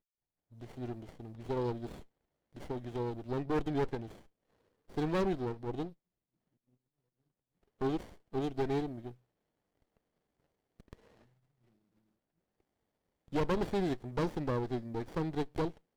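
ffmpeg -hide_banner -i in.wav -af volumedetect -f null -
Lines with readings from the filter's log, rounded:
mean_volume: -38.1 dB
max_volume: -26.9 dB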